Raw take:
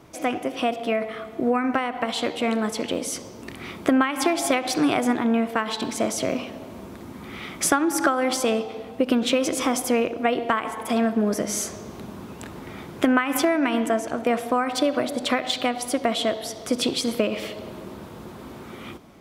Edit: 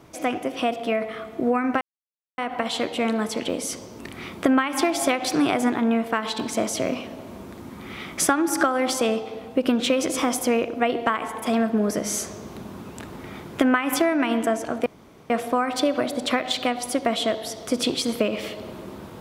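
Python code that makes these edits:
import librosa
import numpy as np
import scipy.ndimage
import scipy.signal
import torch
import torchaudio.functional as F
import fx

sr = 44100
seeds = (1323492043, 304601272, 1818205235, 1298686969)

y = fx.edit(x, sr, fx.insert_silence(at_s=1.81, length_s=0.57),
    fx.insert_room_tone(at_s=14.29, length_s=0.44), tone=tone)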